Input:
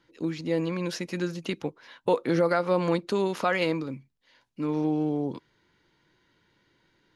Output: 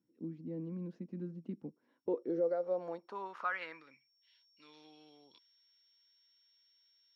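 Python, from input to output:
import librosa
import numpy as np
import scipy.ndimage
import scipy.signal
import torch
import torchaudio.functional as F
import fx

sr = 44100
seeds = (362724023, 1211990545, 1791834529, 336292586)

y = x + 10.0 ** (-54.0 / 20.0) * np.sin(2.0 * np.pi * 5500.0 * np.arange(len(x)) / sr)
y = fx.graphic_eq_15(y, sr, hz=(1000, 2500, 6300), db=(-9, -5, 6), at=(2.23, 3.0))
y = fx.filter_sweep_bandpass(y, sr, from_hz=220.0, to_hz=3600.0, start_s=1.69, end_s=4.44, q=3.0)
y = F.gain(torch.from_numpy(y), -5.0).numpy()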